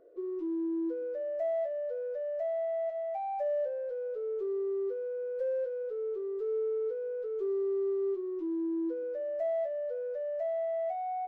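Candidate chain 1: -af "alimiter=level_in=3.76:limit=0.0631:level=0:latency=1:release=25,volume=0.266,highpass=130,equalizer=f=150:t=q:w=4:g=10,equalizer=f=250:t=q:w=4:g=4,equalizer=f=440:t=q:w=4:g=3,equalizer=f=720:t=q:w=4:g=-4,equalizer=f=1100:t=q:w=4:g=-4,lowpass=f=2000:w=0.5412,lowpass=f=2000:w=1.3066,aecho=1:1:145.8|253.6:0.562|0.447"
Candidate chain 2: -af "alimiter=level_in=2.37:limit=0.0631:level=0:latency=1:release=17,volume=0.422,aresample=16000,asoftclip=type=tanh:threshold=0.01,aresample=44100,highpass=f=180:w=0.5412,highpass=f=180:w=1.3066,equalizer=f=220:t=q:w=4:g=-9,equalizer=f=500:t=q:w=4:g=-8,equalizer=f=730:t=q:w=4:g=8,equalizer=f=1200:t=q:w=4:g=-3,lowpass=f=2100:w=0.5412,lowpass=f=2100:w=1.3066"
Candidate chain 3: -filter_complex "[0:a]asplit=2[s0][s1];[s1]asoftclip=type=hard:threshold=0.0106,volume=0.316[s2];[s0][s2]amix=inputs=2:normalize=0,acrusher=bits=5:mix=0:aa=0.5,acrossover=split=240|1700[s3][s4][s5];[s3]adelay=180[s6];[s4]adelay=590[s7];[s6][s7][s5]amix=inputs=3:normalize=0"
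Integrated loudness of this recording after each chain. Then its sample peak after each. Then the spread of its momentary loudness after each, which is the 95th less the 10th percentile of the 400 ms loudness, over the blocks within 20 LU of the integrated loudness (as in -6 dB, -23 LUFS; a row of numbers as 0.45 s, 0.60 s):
-36.5 LUFS, -42.5 LUFS, -33.0 LUFS; -27.0 dBFS, -31.0 dBFS, -24.0 dBFS; 5 LU, 9 LU, 2 LU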